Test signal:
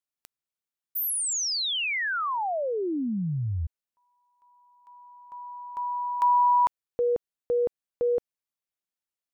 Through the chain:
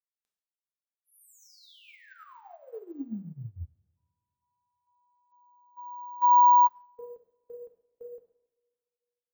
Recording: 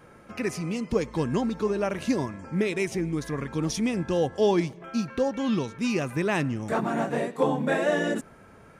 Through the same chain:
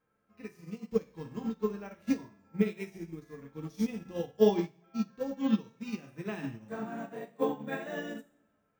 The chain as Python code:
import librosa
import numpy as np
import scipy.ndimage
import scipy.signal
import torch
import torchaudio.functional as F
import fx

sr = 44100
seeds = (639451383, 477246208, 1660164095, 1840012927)

y = fx.rev_double_slope(x, sr, seeds[0], early_s=0.57, late_s=2.7, knee_db=-26, drr_db=1.5)
y = np.repeat(scipy.signal.resample_poly(y, 1, 2), 2)[:len(y)]
y = fx.dynamic_eq(y, sr, hz=610.0, q=1.2, threshold_db=-30.0, ratio=4.0, max_db=-3)
y = fx.echo_feedback(y, sr, ms=138, feedback_pct=58, wet_db=-21)
y = fx.hpss(y, sr, part='percussive', gain_db=-10)
y = fx.upward_expand(y, sr, threshold_db=-34.0, expansion=2.5)